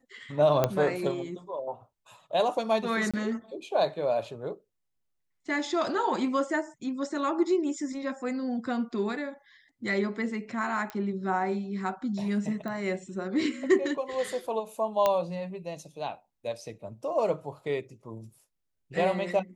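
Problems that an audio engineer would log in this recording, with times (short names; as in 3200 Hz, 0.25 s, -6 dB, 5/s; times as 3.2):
0.64 pop -10 dBFS
3.11–3.14 gap 26 ms
10.9 pop -21 dBFS
12.68 pop -24 dBFS
15.06 pop -11 dBFS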